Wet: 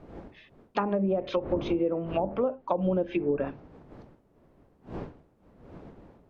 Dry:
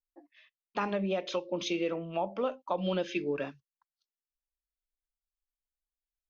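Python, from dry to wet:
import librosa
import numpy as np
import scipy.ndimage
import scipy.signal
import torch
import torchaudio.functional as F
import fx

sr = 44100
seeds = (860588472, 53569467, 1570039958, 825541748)

y = fx.dmg_wind(x, sr, seeds[0], corner_hz=410.0, level_db=-50.0)
y = fx.env_lowpass_down(y, sr, base_hz=660.0, full_db=-27.0)
y = F.gain(torch.from_numpy(y), 5.5).numpy()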